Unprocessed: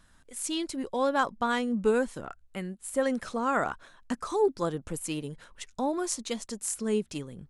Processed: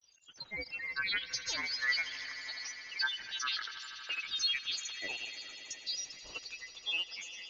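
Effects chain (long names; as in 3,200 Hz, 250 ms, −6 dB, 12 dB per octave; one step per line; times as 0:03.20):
voice inversion scrambler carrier 3,600 Hz
granular cloud, pitch spread up and down by 12 semitones
echo that builds up and dies away 80 ms, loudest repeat 5, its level −18 dB
level −7 dB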